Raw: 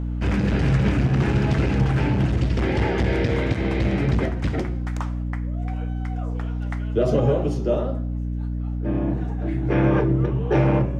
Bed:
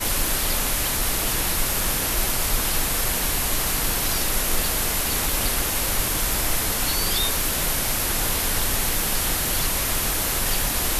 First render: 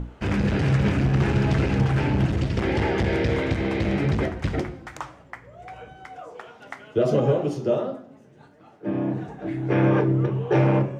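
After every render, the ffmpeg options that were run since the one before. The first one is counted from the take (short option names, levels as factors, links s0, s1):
-af "bandreject=f=60:t=h:w=6,bandreject=f=120:t=h:w=6,bandreject=f=180:t=h:w=6,bandreject=f=240:t=h:w=6,bandreject=f=300:t=h:w=6"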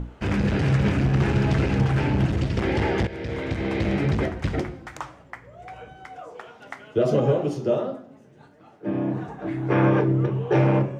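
-filter_complex "[0:a]asettb=1/sr,asplit=3[s0][s1][s2];[s0]atrim=end=9.144[s3];[s1]atrim=start=9.14:end=9.9,asetpts=PTS-STARTPTS,afade=t=in:d=0.004:c=qsin,afade=t=out:st=0.756:d=0.004:c=qsin,equalizer=f=1100:w=1.9:g=7[s4];[s2]atrim=start=9.896[s5];[s3][s4]acrossfade=d=0.004:c1=hsin:c2=qsin[s6];[s6][s5]acrossfade=d=0.004:c1=qsin:c2=hsin,asplit=2[s7][s8];[s7]atrim=end=3.07,asetpts=PTS-STARTPTS,afade=t=out:st=3.066:d=0.004:c=hsin:silence=0.177828[s9];[s8]atrim=start=3.07,asetpts=PTS-STARTPTS,afade=t=in:d=0.72:silence=0.177828[s10];[s9][s10]concat=n=2:v=0:a=1"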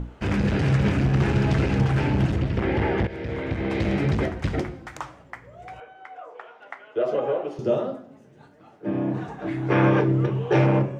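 -filter_complex "[0:a]asettb=1/sr,asplit=3[s0][s1][s2];[s0]atrim=end=2.374[s3];[s1]atrim=start=2.37:end=3.7,asetpts=PTS-STARTPTS,afade=t=in:d=0.004:c=qsin,afade=t=out:st=1.326:d=0.004:c=qsin,acrossover=split=3200[s4][s5];[s5]acompressor=threshold=0.00158:ratio=4:attack=1:release=60[s6];[s4][s6]amix=inputs=2:normalize=0[s7];[s2]atrim=start=3.696[s8];[s3][s7]acrossfade=d=0.004:c1=hsin:c2=qsin[s9];[s9][s8]acrossfade=d=0.004:c1=qsin:c2=hsin,asettb=1/sr,asplit=3[s10][s11][s12];[s10]atrim=end=5.804[s13];[s11]atrim=start=5.8:end=7.59,asetpts=PTS-STARTPTS,afade=t=in:d=0.004:c=qsin,afade=t=out:st=1.786:d=0.004:c=qsin,acrossover=split=380 3000:gain=0.0891 1 0.178[s14][s15][s16];[s14][s15][s16]amix=inputs=3:normalize=0[s17];[s12]atrim=start=7.586[s18];[s13][s17]acrossfade=d=0.004:c1=hsin:c2=qsin[s19];[s19][s18]acrossfade=d=0.004:c1=qsin:c2=hsin,asettb=1/sr,asplit=3[s20][s21][s22];[s20]atrim=end=9.144[s23];[s21]atrim=start=9.14:end=10.66,asetpts=PTS-STARTPTS,afade=t=in:d=0.004:c=qsin,afade=t=out:st=1.516:d=0.004:c=qsin,equalizer=f=4100:t=o:w=2.7:g=4.5[s24];[s22]atrim=start=10.656[s25];[s23][s24]acrossfade=d=0.004:c1=hsin:c2=qsin[s26];[s26][s25]acrossfade=d=0.004:c1=qsin:c2=hsin"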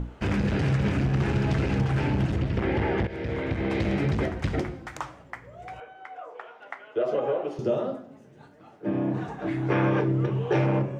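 -af "acompressor=threshold=0.0708:ratio=2"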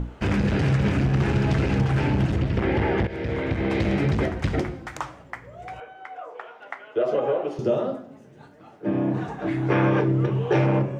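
-af "volume=1.41"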